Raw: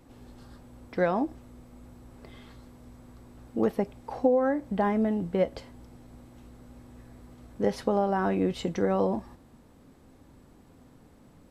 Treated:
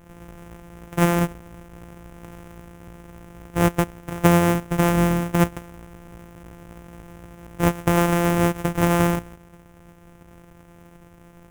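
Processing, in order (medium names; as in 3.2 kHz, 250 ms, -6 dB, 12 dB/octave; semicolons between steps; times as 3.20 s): sorted samples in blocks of 256 samples; peaking EQ 4.3 kHz -14.5 dB 0.68 oct; trim +7 dB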